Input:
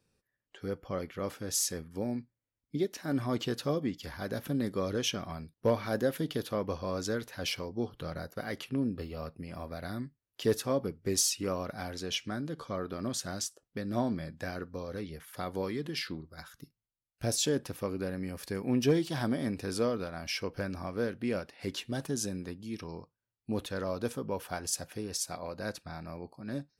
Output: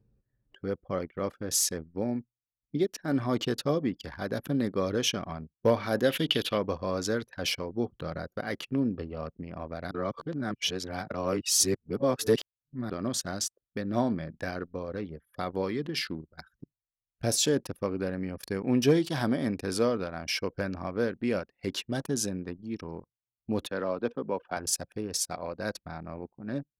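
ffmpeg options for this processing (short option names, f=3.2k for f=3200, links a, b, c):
-filter_complex "[0:a]asplit=3[a][b][c];[a]afade=t=out:st=6.03:d=0.02[d];[b]equalizer=f=2.9k:t=o:w=0.97:g=14.5,afade=t=in:st=6.03:d=0.02,afade=t=out:st=6.57:d=0.02[e];[c]afade=t=in:st=6.57:d=0.02[f];[d][e][f]amix=inputs=3:normalize=0,asettb=1/sr,asplit=3[g][h][i];[g]atrim=end=23.674[j];[h]atrim=start=23.67:end=24.57,asetpts=PTS-STARTPTS,afade=t=in:d=0.004:c=qsin,afade=t=out:st=0.896:d=0.004:c=qsin,acrossover=split=160 4500:gain=0.224 1 0.1[k][l][m];[k][l][m]amix=inputs=3:normalize=0[n];[i]atrim=start=24.566[o];[j][n]acrossfade=d=0.004:c1=hsin:c2=qsin[p];[p][o]acrossfade=d=0.004:c1=qsin:c2=hsin,asplit=3[q][r][s];[q]atrim=end=9.912[t];[r]atrim=start=9.908:end=12.902,asetpts=PTS-STARTPTS,areverse[u];[s]atrim=start=12.898[v];[t][u]acrossfade=d=0.004:c1=hsin:c2=hsin[w];[w][v]acrossfade=d=0.004:c1=hsin:c2=hsin,highpass=f=91:p=1,anlmdn=0.1,acompressor=mode=upward:threshold=-53dB:ratio=2.5,volume=4dB"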